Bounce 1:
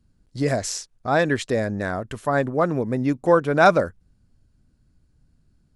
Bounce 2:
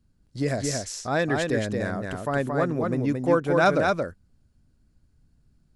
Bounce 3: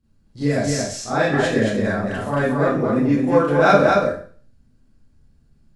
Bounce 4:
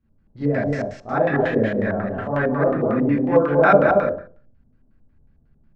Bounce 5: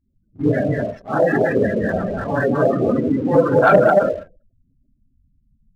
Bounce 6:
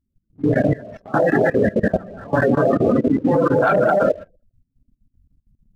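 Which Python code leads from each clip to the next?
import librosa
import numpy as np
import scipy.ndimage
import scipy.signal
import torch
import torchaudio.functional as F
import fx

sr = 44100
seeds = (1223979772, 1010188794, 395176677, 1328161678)

y1 = fx.dynamic_eq(x, sr, hz=880.0, q=1.0, threshold_db=-31.0, ratio=4.0, max_db=-4)
y1 = y1 + 10.0 ** (-3.5 / 20.0) * np.pad(y1, (int(225 * sr / 1000.0), 0))[:len(y1)]
y1 = y1 * librosa.db_to_amplitude(-3.0)
y2 = fx.high_shelf(y1, sr, hz=7100.0, db=-6.5)
y2 = fx.rev_schroeder(y2, sr, rt60_s=0.44, comb_ms=28, drr_db=-9.5)
y2 = y2 * librosa.db_to_amplitude(-3.5)
y3 = fx.filter_lfo_lowpass(y2, sr, shape='square', hz=5.5, low_hz=700.0, high_hz=2000.0, q=1.4)
y3 = y3 * librosa.db_to_amplitude(-2.0)
y4 = fx.phase_scramble(y3, sr, seeds[0], window_ms=50)
y4 = fx.spec_gate(y4, sr, threshold_db=-20, keep='strong')
y4 = fx.leveller(y4, sr, passes=1)
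y4 = y4 * librosa.db_to_amplitude(-1.0)
y5 = fx.level_steps(y4, sr, step_db=20)
y5 = y5 * librosa.db_to_amplitude(4.5)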